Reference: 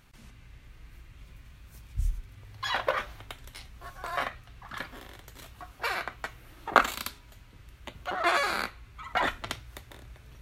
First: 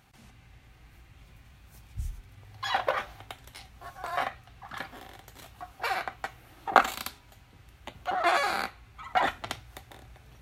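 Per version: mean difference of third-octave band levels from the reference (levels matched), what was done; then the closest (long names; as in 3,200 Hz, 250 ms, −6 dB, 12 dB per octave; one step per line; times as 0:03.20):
2.0 dB: high-pass filter 58 Hz
parametric band 770 Hz +10 dB 0.23 octaves
level −1 dB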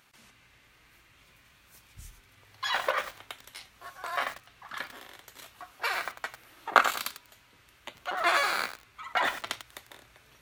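4.0 dB: high-pass filter 630 Hz 6 dB per octave
feedback echo at a low word length 97 ms, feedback 35%, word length 6 bits, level −9.5 dB
level +1.5 dB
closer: first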